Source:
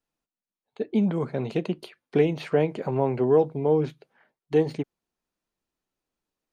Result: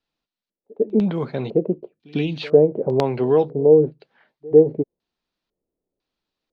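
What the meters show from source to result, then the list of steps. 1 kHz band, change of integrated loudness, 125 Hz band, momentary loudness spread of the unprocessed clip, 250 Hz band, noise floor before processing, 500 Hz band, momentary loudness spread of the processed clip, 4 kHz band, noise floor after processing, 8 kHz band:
+1.5 dB, +6.0 dB, +3.0 dB, 12 LU, +4.0 dB, below −85 dBFS, +7.5 dB, 13 LU, +6.0 dB, below −85 dBFS, can't be measured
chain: gain on a spectral selection 0:01.88–0:02.42, 330–2,300 Hz −11 dB
auto-filter low-pass square 1 Hz 490–4,100 Hz
echo ahead of the sound 100 ms −24 dB
level +2.5 dB

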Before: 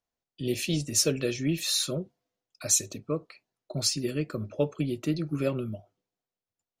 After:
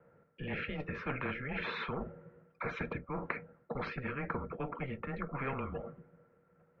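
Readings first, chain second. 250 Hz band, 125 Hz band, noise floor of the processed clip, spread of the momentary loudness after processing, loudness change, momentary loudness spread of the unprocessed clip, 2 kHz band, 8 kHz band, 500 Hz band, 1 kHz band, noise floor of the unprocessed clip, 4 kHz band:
−10.5 dB, −9.0 dB, −70 dBFS, 8 LU, −11.0 dB, 11 LU, +2.5 dB, below −40 dB, −9.0 dB, +6.5 dB, below −85 dBFS, −19.5 dB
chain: hollow resonant body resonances 310/610/1,500 Hz, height 17 dB, ringing for 65 ms
reversed playback
downward compressor 5 to 1, threshold −31 dBFS, peak gain reduction 19.5 dB
reversed playback
single-sideband voice off tune −140 Hz 210–2,100 Hz
every bin compressed towards the loudest bin 4 to 1
level +3.5 dB

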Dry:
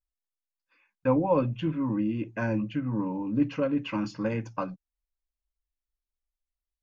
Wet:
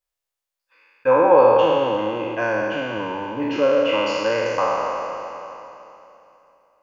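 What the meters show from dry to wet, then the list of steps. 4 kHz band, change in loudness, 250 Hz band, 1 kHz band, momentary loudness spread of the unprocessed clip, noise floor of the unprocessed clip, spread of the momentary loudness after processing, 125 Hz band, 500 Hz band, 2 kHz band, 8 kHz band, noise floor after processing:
+16.0 dB, +9.5 dB, 0.0 dB, +15.0 dB, 7 LU, below −85 dBFS, 17 LU, −5.5 dB, +14.5 dB, +13.5 dB, can't be measured, −85 dBFS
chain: peak hold with a decay on every bin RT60 2.93 s
low shelf with overshoot 330 Hz −12.5 dB, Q 1.5
delay that swaps between a low-pass and a high-pass 124 ms, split 980 Hz, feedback 72%, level −13.5 dB
level +5.5 dB

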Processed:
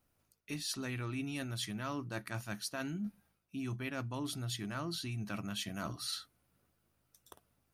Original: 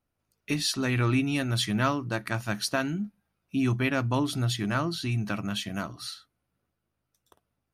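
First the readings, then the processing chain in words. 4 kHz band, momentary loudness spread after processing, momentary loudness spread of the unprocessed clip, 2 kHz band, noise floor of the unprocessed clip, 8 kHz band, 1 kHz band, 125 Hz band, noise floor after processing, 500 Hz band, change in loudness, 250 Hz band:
−9.0 dB, 4 LU, 9 LU, −12.0 dB, −82 dBFS, −7.0 dB, −12.5 dB, −12.5 dB, −78 dBFS, −12.5 dB, −11.5 dB, −11.5 dB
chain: high-shelf EQ 5,900 Hz +7 dB
reversed playback
downward compressor 12 to 1, threshold −40 dBFS, peak gain reduction 20 dB
reversed playback
level +3.5 dB

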